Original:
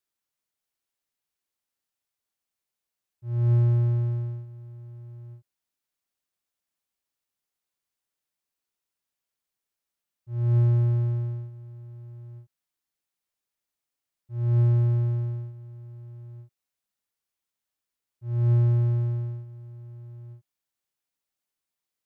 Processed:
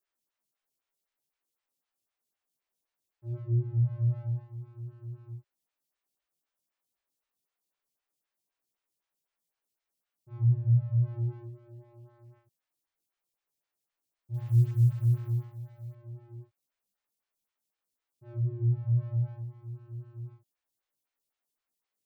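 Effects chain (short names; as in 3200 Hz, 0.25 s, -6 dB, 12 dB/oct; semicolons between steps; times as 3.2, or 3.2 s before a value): soft clip -20 dBFS, distortion -14 dB; chorus 0.2 Hz, delay 17.5 ms, depth 3.3 ms; 14.34–15.95 companded quantiser 8-bit; photocell phaser 3.9 Hz; gain +6 dB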